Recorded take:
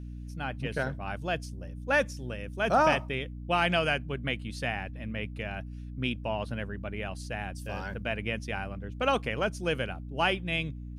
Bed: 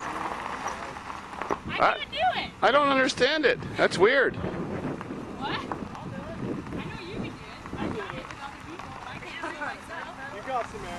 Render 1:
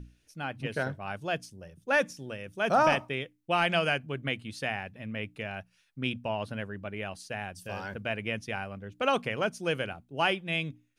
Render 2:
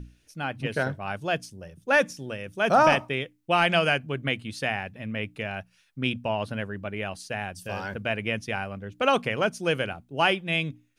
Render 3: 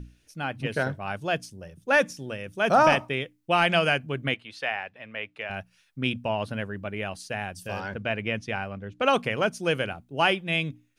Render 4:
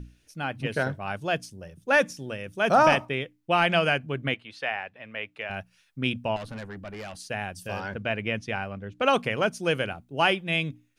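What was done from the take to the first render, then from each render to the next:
mains-hum notches 60/120/180/240/300 Hz
level +4.5 dB
0:04.34–0:05.50: three-way crossover with the lows and the highs turned down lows −17 dB, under 450 Hz, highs −14 dB, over 4,600 Hz; 0:07.80–0:09.06: high-frequency loss of the air 60 metres
0:03.05–0:05.05: high-shelf EQ 5,100 Hz −5.5 dB; 0:06.36–0:07.15: tube saturation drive 33 dB, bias 0.35

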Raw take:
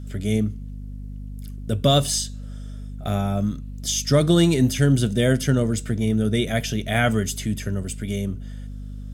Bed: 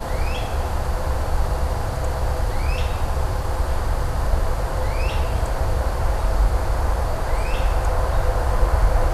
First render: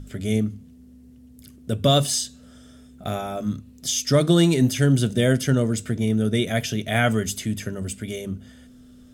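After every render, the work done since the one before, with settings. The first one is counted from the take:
mains-hum notches 50/100/150/200 Hz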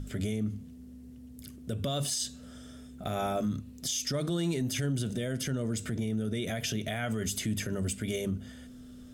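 downward compressor, threshold −22 dBFS, peak gain reduction 9.5 dB
brickwall limiter −23 dBFS, peak gain reduction 10 dB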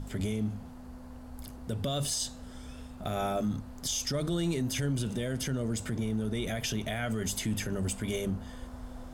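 mix in bed −27 dB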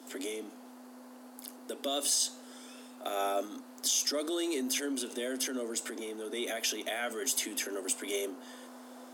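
Butterworth high-pass 250 Hz 96 dB per octave
high-shelf EQ 5,100 Hz +6 dB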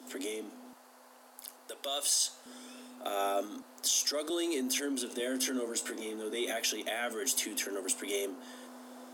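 0:00.73–0:02.46: high-pass filter 620 Hz
0:03.62–0:04.30: high-pass filter 370 Hz
0:05.18–0:06.62: double-tracking delay 19 ms −5.5 dB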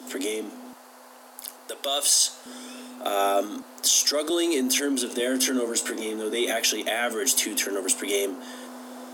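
level +9 dB

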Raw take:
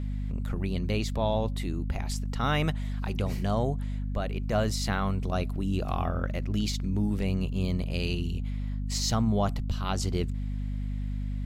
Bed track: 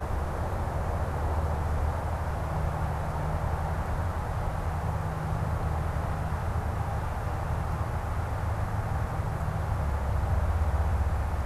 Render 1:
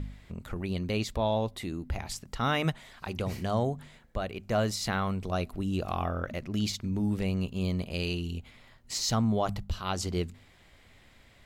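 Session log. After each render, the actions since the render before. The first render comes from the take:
hum removal 50 Hz, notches 5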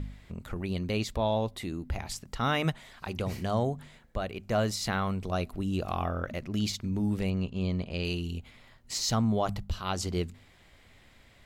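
0:07.30–0:08.05: high-frequency loss of the air 92 metres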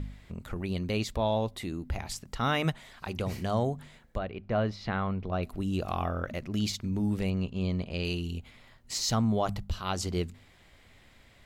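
0:04.18–0:05.43: high-frequency loss of the air 290 metres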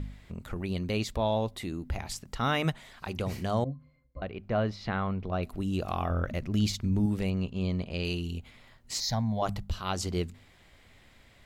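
0:03.64–0:04.22: resonances in every octave C, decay 0.15 s
0:06.10–0:07.06: low-shelf EQ 140 Hz +8.5 dB
0:09.00–0:09.42: phaser with its sweep stopped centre 1,900 Hz, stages 8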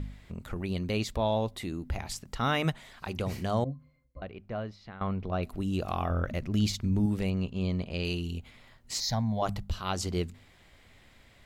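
0:03.66–0:05.01: fade out, to −16.5 dB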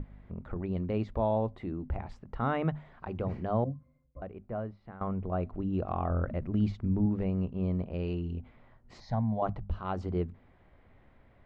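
low-pass filter 1,200 Hz 12 dB per octave
mains-hum notches 50/100/150/200/250 Hz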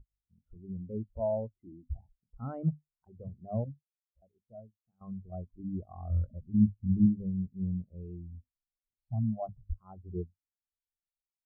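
automatic gain control gain up to 3.5 dB
every bin expanded away from the loudest bin 2.5 to 1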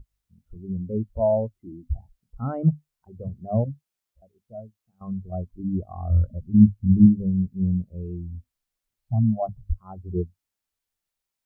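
level +10 dB

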